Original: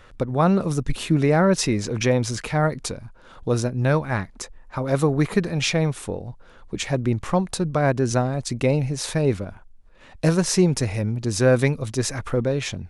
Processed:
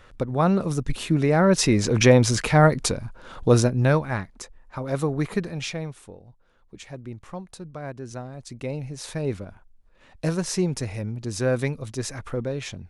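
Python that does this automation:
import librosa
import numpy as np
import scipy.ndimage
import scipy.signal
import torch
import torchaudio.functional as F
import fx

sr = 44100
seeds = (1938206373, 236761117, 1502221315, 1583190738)

y = fx.gain(x, sr, db=fx.line((1.3, -2.0), (1.93, 5.0), (3.56, 5.0), (4.3, -5.0), (5.4, -5.0), (6.15, -15.0), (8.1, -15.0), (9.34, -6.0)))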